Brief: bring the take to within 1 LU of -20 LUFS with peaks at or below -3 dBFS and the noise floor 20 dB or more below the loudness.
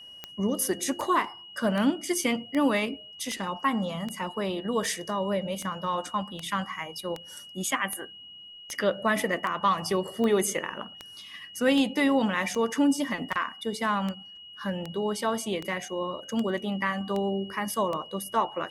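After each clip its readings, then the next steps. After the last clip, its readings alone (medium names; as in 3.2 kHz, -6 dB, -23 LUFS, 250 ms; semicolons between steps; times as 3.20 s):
clicks found 25; steady tone 2.9 kHz; tone level -44 dBFS; loudness -28.5 LUFS; peak level -12.0 dBFS; loudness target -20.0 LUFS
-> de-click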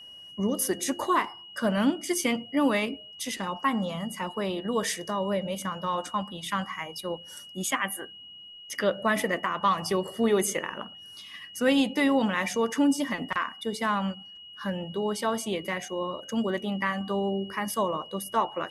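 clicks found 0; steady tone 2.9 kHz; tone level -44 dBFS
-> band-stop 2.9 kHz, Q 30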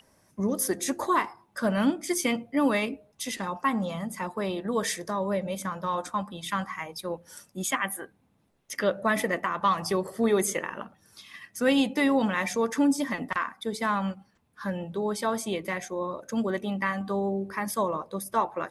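steady tone not found; loudness -28.5 LUFS; peak level -12.0 dBFS; loudness target -20.0 LUFS
-> trim +8.5 dB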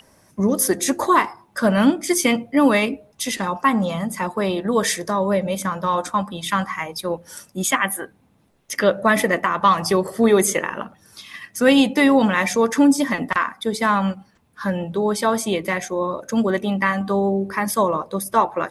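loudness -20.0 LUFS; peak level -3.5 dBFS; noise floor -58 dBFS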